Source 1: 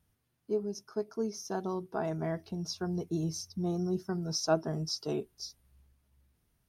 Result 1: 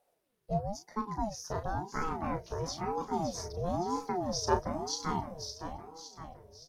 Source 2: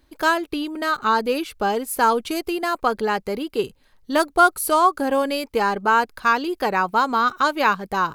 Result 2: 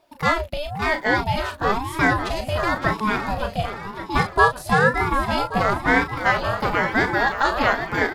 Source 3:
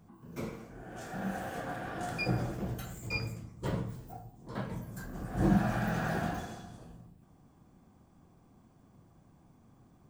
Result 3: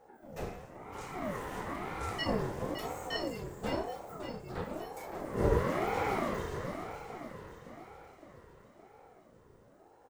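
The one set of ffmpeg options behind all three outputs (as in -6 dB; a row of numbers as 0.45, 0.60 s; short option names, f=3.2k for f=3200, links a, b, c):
-filter_complex "[0:a]asplit=2[a][b];[b]adelay=35,volume=-8dB[c];[a][c]amix=inputs=2:normalize=0,acrossover=split=7400[d][e];[e]acompressor=threshold=-48dB:ratio=4:attack=1:release=60[f];[d][f]amix=inputs=2:normalize=0,asplit=2[g][h];[h]aecho=0:1:564|1128|1692|2256|2820|3384:0.355|0.188|0.0997|0.0528|0.028|0.0148[i];[g][i]amix=inputs=2:normalize=0,aeval=exprs='val(0)*sin(2*PI*450*n/s+450*0.45/1*sin(2*PI*1*n/s))':c=same,volume=1.5dB"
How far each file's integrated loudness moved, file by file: -0.5, -0.5, -1.0 LU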